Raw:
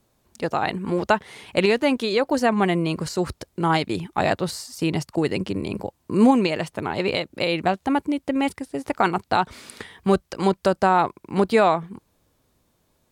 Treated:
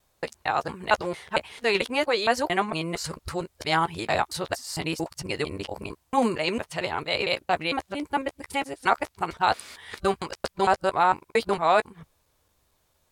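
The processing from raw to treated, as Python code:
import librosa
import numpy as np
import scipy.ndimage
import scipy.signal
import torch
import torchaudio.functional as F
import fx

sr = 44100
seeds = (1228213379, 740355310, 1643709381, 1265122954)

y = fx.local_reverse(x, sr, ms=227.0)
y = fx.peak_eq(y, sr, hz=220.0, db=-11.5, octaves=1.9)
y = fx.doubler(y, sr, ms=13.0, db=-13)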